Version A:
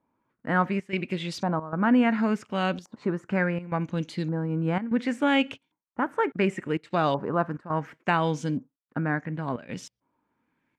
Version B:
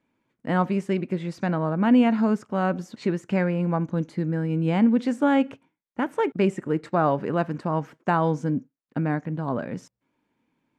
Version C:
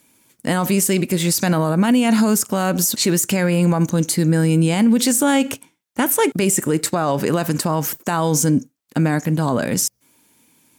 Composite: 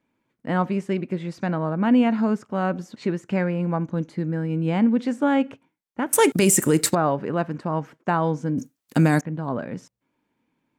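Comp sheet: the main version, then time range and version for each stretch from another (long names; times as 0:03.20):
B
0:06.13–0:06.95: punch in from C
0:08.58–0:09.21: punch in from C
not used: A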